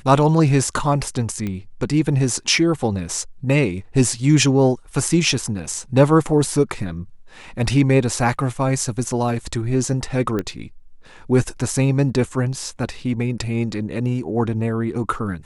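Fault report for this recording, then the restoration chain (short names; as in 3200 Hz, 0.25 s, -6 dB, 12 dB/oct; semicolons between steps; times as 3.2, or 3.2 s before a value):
1.47 pop -15 dBFS
10.39 pop -12 dBFS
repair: de-click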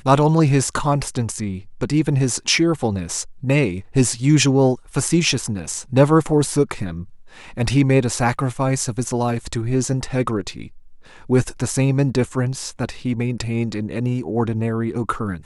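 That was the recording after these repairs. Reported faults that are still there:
10.39 pop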